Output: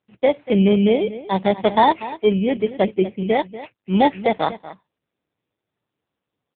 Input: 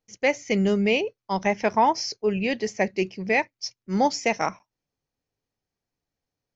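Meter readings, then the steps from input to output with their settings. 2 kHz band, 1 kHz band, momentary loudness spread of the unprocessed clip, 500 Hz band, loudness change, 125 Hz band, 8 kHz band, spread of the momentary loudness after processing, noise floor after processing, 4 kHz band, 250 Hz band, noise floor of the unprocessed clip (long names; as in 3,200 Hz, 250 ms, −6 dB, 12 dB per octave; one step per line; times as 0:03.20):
−2.5 dB, +4.5 dB, 8 LU, +6.0 dB, +5.0 dB, +7.0 dB, can't be measured, 7 LU, −83 dBFS, +1.5 dB, +7.0 dB, below −85 dBFS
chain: samples in bit-reversed order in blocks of 16 samples
slap from a distant wall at 41 metres, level −15 dB
level +7 dB
AMR narrowband 6.7 kbit/s 8,000 Hz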